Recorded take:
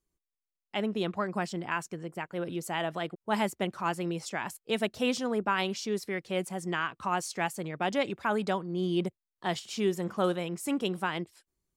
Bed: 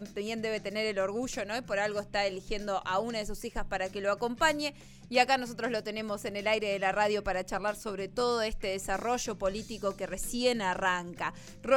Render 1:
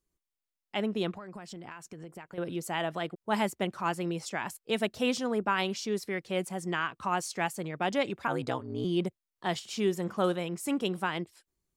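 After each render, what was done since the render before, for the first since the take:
0:01.11–0:02.38: downward compressor 8 to 1, threshold −40 dBFS
0:08.27–0:08.85: ring modulation 63 Hz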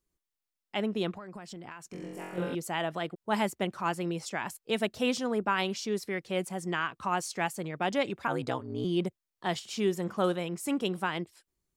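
0:01.91–0:02.55: flutter between parallel walls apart 3.8 metres, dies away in 1.1 s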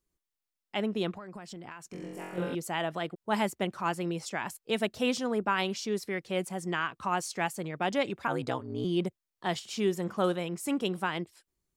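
no processing that can be heard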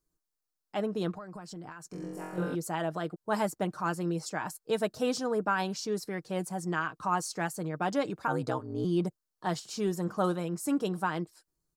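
flat-topped bell 2,600 Hz −9 dB 1.1 octaves
comb filter 6.5 ms, depth 42%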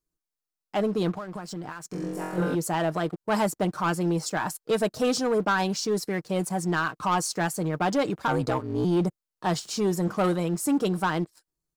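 leveller curve on the samples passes 2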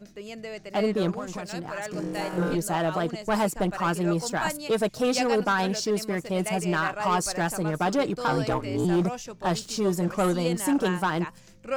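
mix in bed −4.5 dB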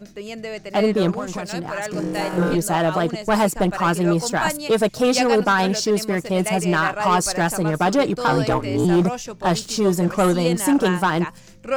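level +6.5 dB

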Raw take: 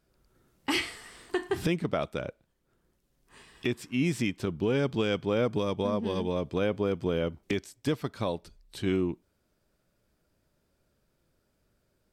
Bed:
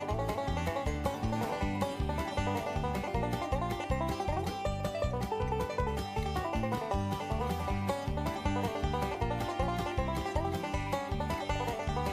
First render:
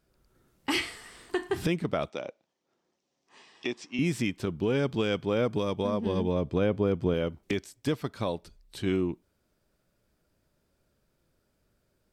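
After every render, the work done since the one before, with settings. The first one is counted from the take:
0:02.10–0:03.99: loudspeaker in its box 290–6,800 Hz, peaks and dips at 430 Hz −3 dB, 790 Hz +4 dB, 1,500 Hz −7 dB, 5,800 Hz +5 dB
0:06.06–0:07.14: spectral tilt −1.5 dB per octave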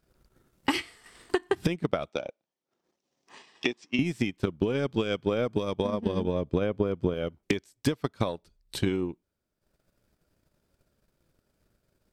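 transient designer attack +10 dB, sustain −10 dB
downward compressor 3 to 1, threshold −23 dBFS, peak gain reduction 7.5 dB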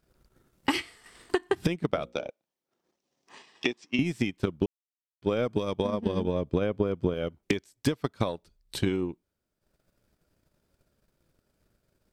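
0:01.88–0:02.28: mains-hum notches 60/120/180/240/300/360/420/480/540 Hz
0:04.66–0:05.22: silence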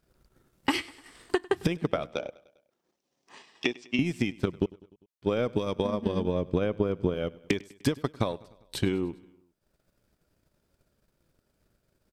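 repeating echo 100 ms, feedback 60%, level −22.5 dB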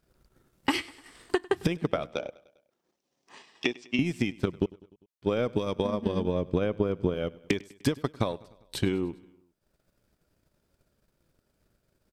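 no processing that can be heard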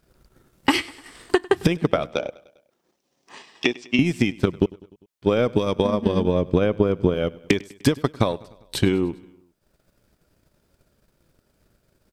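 level +7.5 dB
brickwall limiter −2 dBFS, peak gain reduction 1 dB

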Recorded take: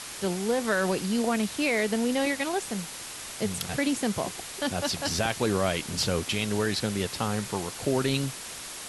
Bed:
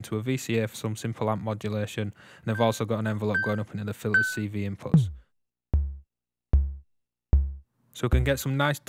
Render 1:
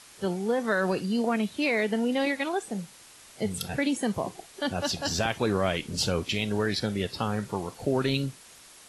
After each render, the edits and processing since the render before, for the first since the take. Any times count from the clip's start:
noise reduction from a noise print 12 dB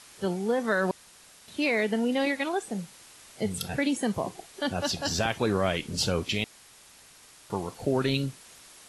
0:00.91–0:01.48: fill with room tone
0:06.44–0:07.50: fill with room tone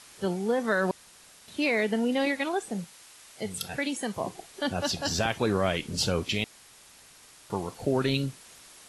0:02.84–0:04.21: low-shelf EQ 470 Hz −7.5 dB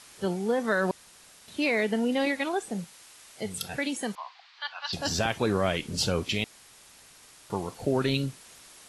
0:04.15–0:04.93: elliptic band-pass filter 960–4,500 Hz, stop band 50 dB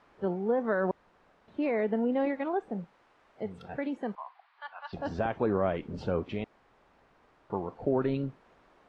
low-pass filter 1,100 Hz 12 dB per octave
parametric band 110 Hz −5.5 dB 1.8 octaves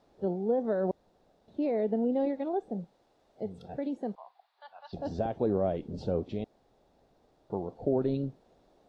flat-topped bell 1,600 Hz −13 dB
notch filter 3,100 Hz, Q 14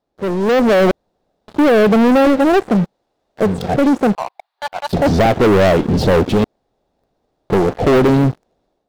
leveller curve on the samples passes 5
automatic gain control gain up to 8.5 dB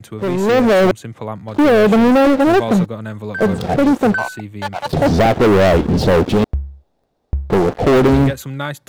mix in bed +0.5 dB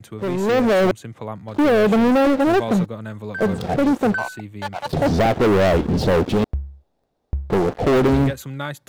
level −4.5 dB

